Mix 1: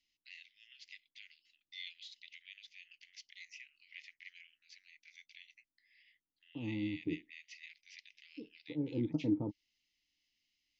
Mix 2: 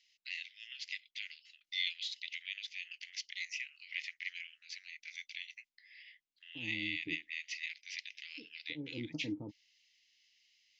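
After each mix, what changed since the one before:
first voice +11.5 dB
second voice −7.5 dB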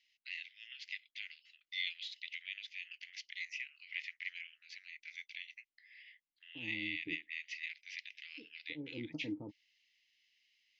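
master: add bass and treble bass −4 dB, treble −11 dB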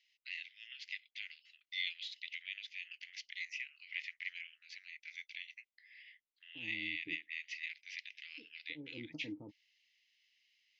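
second voice −4.5 dB

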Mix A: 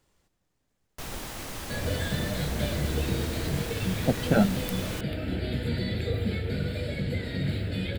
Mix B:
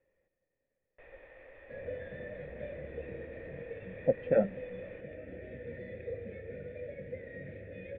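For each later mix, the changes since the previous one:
speech +6.5 dB
first sound: add parametric band 180 Hz −14 dB 1.5 octaves
master: add formant resonators in series e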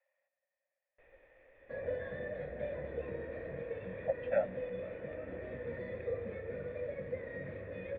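speech: add Butterworth high-pass 560 Hz 96 dB per octave
first sound −9.0 dB
second sound: remove phaser with its sweep stopped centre 2,600 Hz, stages 4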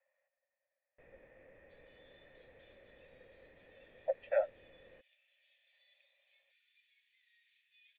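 first sound: add parametric band 180 Hz +14 dB 1.5 octaves
second sound: add Chebyshev high-pass filter 3,000 Hz, order 4

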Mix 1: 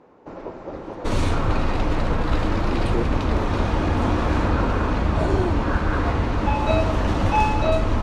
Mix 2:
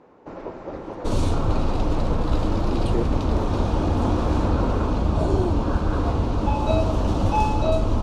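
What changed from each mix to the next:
second sound: add parametric band 1,900 Hz −14.5 dB 0.89 octaves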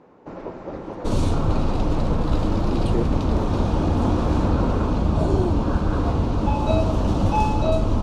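master: add parametric band 170 Hz +4 dB 1.1 octaves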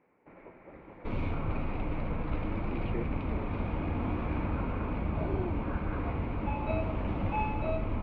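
first sound −6.5 dB
master: add transistor ladder low-pass 2,400 Hz, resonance 75%

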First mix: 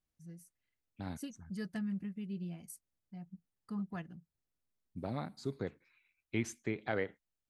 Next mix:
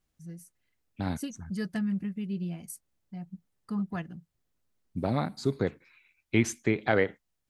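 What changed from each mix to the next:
first voice +7.5 dB
second voice +10.5 dB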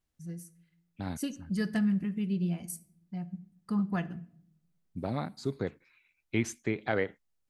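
second voice −5.0 dB
reverb: on, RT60 0.60 s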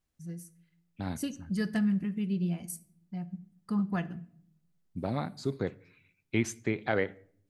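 second voice: send on

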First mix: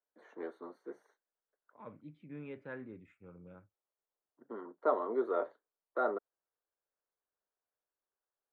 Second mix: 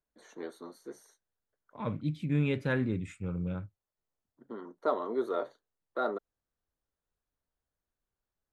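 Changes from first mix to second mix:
second voice +12.0 dB
master: remove three-way crossover with the lows and the highs turned down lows −13 dB, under 260 Hz, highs −24 dB, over 2,400 Hz

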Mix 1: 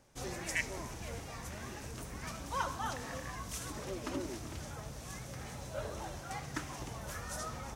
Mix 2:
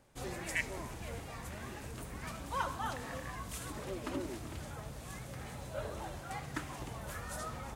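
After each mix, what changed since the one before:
master: add parametric band 5,800 Hz −8 dB 0.46 octaves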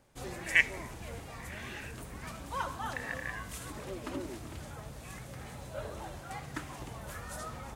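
speech +11.0 dB

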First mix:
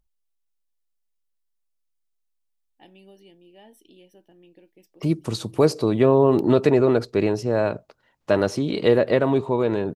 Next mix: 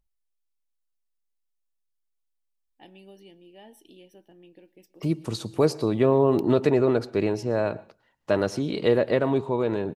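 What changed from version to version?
second voice −4.5 dB
reverb: on, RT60 0.30 s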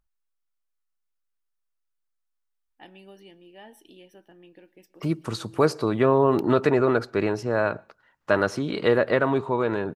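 second voice: send −9.0 dB
master: add parametric band 1,400 Hz +10.5 dB 1.1 octaves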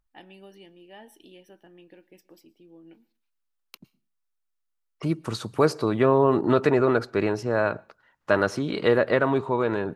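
first voice: entry −2.65 s

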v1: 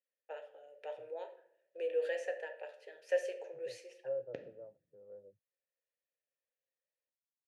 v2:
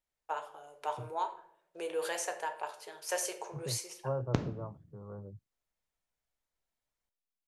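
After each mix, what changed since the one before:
first voice −6.0 dB
master: remove formant filter e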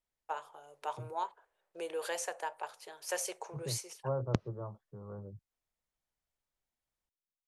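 reverb: off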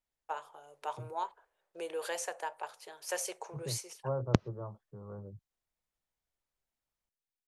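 background +5.5 dB

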